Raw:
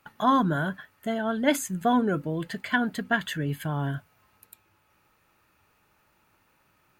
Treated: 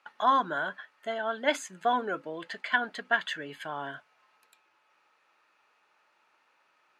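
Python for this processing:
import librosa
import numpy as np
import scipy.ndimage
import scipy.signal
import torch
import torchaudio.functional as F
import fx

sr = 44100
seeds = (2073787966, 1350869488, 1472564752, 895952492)

y = fx.bandpass_edges(x, sr, low_hz=560.0, high_hz=5100.0)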